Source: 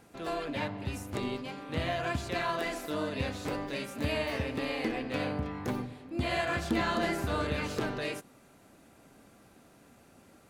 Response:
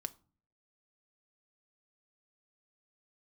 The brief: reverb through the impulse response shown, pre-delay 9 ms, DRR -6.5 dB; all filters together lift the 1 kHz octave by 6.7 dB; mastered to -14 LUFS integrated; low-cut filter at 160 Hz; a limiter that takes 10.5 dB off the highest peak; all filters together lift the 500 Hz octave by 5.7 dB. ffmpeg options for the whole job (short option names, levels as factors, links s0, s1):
-filter_complex "[0:a]highpass=160,equalizer=f=500:t=o:g=5,equalizer=f=1000:t=o:g=7,alimiter=level_in=1.12:limit=0.0631:level=0:latency=1,volume=0.891,asplit=2[s0][s1];[1:a]atrim=start_sample=2205,adelay=9[s2];[s1][s2]afir=irnorm=-1:irlink=0,volume=2.66[s3];[s0][s3]amix=inputs=2:normalize=0,volume=4.47"